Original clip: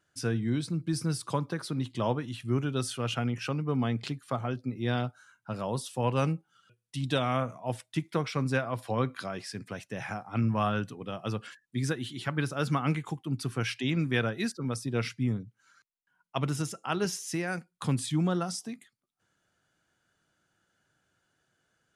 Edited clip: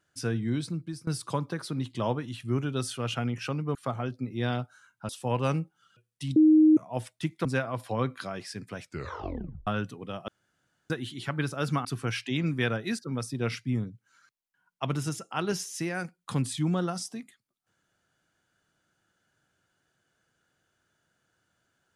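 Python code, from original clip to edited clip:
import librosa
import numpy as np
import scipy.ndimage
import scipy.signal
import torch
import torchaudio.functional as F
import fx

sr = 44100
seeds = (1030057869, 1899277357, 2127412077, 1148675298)

y = fx.edit(x, sr, fx.fade_out_to(start_s=0.67, length_s=0.4, floor_db=-21.5),
    fx.cut(start_s=3.75, length_s=0.45),
    fx.cut(start_s=5.54, length_s=0.28),
    fx.bleep(start_s=7.09, length_s=0.41, hz=311.0, db=-14.5),
    fx.cut(start_s=8.18, length_s=0.26),
    fx.tape_stop(start_s=9.77, length_s=0.89),
    fx.room_tone_fill(start_s=11.27, length_s=0.62),
    fx.cut(start_s=12.84, length_s=0.54), tone=tone)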